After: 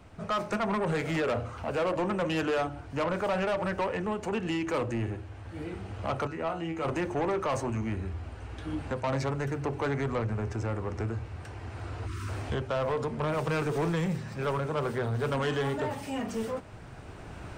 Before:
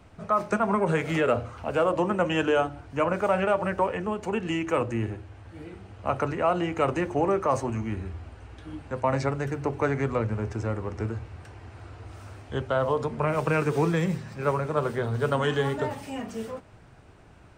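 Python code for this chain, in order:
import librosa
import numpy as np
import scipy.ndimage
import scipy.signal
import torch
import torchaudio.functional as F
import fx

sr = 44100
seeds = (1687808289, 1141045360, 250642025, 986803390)

y = fx.recorder_agc(x, sr, target_db=-20.0, rise_db_per_s=7.2, max_gain_db=30)
y = fx.comb_fb(y, sr, f0_hz=81.0, decay_s=0.23, harmonics='all', damping=0.0, mix_pct=90, at=(6.27, 6.85))
y = fx.spec_erase(y, sr, start_s=12.07, length_s=0.22, low_hz=430.0, high_hz=960.0)
y = 10.0 ** (-24.5 / 20.0) * np.tanh(y / 10.0 ** (-24.5 / 20.0))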